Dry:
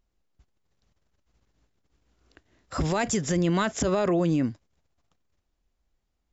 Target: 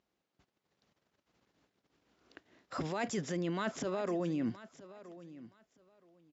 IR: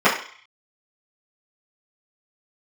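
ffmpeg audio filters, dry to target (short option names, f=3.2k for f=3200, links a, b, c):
-af "highpass=190,lowpass=5.3k,areverse,acompressor=threshold=-34dB:ratio=6,areverse,aecho=1:1:971|1942:0.141|0.0268,volume=1.5dB"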